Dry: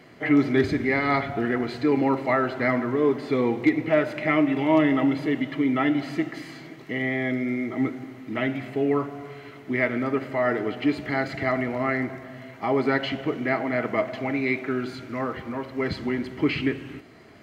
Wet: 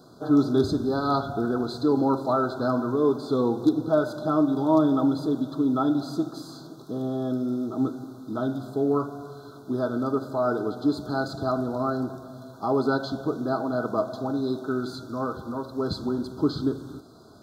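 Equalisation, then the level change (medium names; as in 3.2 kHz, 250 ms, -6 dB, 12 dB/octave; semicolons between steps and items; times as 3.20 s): Chebyshev band-stop 1.5–3.5 kHz, order 5; treble shelf 4 kHz +6 dB; 0.0 dB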